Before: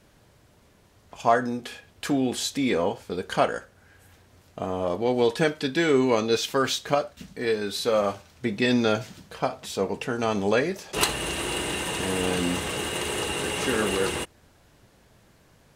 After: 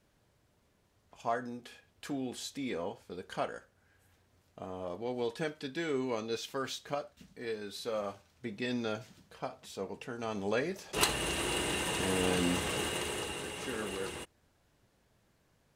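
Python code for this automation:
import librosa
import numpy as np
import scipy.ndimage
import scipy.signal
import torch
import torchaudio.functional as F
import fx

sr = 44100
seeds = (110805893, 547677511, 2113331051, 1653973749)

y = fx.gain(x, sr, db=fx.line((10.17, -13.0), (11.12, -4.5), (12.83, -4.5), (13.54, -13.0)))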